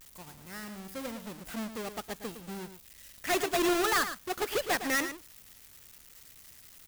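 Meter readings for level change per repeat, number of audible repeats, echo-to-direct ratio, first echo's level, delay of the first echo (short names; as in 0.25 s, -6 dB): no steady repeat, 1, -10.5 dB, -10.5 dB, 0.11 s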